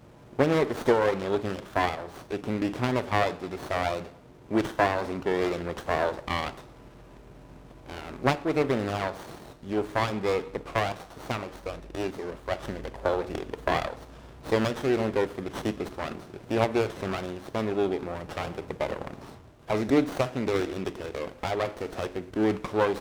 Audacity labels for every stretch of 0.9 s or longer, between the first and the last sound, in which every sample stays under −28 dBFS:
6.490000	7.900000	silence